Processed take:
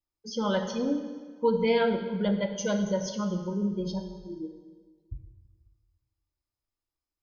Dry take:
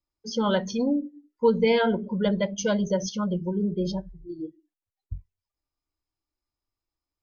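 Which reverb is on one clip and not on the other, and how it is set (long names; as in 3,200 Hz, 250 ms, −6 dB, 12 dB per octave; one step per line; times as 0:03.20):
dense smooth reverb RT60 1.6 s, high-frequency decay 0.85×, DRR 5.5 dB
level −4.5 dB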